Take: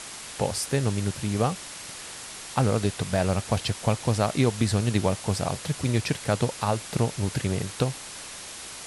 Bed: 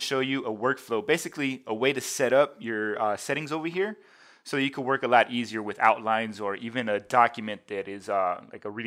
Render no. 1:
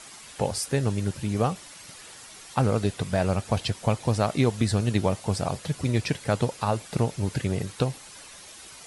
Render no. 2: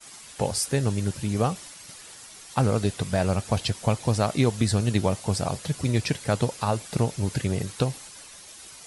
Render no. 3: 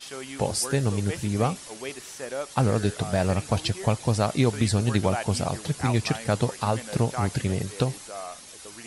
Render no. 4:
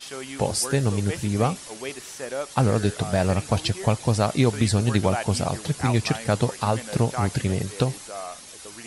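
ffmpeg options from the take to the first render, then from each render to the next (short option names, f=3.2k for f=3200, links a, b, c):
-af "afftdn=nr=9:nf=-40"
-af "agate=range=-33dB:threshold=-42dB:ratio=3:detection=peak,bass=f=250:g=1,treble=f=4k:g=4"
-filter_complex "[1:a]volume=-11.5dB[a];[0:a][a]amix=inputs=2:normalize=0"
-af "volume=2dB"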